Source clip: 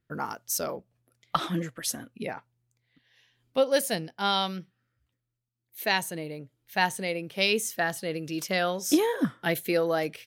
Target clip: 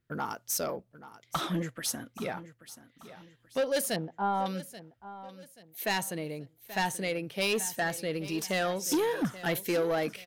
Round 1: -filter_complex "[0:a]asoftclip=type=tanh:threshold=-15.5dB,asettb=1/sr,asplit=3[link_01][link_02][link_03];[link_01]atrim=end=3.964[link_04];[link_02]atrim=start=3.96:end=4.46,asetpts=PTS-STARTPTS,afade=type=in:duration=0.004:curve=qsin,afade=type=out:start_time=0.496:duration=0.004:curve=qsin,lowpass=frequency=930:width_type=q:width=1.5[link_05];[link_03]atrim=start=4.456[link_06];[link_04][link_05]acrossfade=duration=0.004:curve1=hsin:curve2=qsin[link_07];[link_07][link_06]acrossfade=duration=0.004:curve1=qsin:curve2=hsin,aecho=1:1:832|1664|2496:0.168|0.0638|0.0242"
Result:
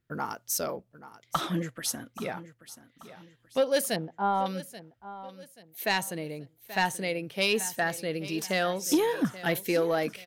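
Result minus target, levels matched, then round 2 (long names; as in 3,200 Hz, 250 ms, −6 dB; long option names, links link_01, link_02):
soft clipping: distortion −8 dB
-filter_complex "[0:a]asoftclip=type=tanh:threshold=-23dB,asettb=1/sr,asplit=3[link_01][link_02][link_03];[link_01]atrim=end=3.964[link_04];[link_02]atrim=start=3.96:end=4.46,asetpts=PTS-STARTPTS,afade=type=in:duration=0.004:curve=qsin,afade=type=out:start_time=0.496:duration=0.004:curve=qsin,lowpass=frequency=930:width_type=q:width=1.5[link_05];[link_03]atrim=start=4.456[link_06];[link_04][link_05]acrossfade=duration=0.004:curve1=hsin:curve2=qsin[link_07];[link_07][link_06]acrossfade=duration=0.004:curve1=qsin:curve2=hsin,aecho=1:1:832|1664|2496:0.168|0.0638|0.0242"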